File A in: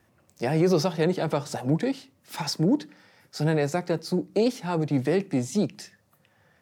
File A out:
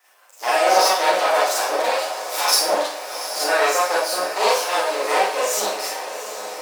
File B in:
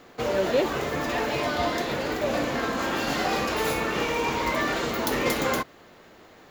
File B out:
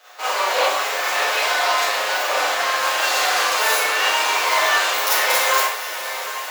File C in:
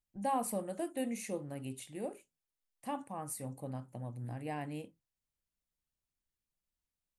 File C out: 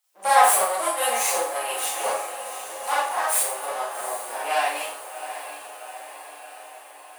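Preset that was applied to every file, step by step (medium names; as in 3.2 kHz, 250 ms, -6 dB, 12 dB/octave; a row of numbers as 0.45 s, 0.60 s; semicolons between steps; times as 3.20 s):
comb filter that takes the minimum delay 9.5 ms; high-pass 600 Hz 24 dB/octave; treble shelf 4.7 kHz +4.5 dB; on a send: echo that smears into a reverb 760 ms, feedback 63%, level -11 dB; on the sum: Schroeder reverb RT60 0.5 s, combs from 30 ms, DRR -7 dB; peak normalisation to -3 dBFS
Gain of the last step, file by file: +6.0 dB, +2.0 dB, +12.5 dB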